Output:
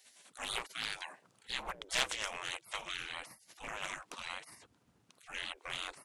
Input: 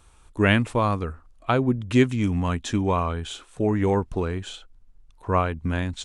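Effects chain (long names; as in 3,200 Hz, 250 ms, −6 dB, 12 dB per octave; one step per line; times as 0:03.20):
gate on every frequency bin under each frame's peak −30 dB weak
highs frequency-modulated by the lows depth 0.47 ms
level +7 dB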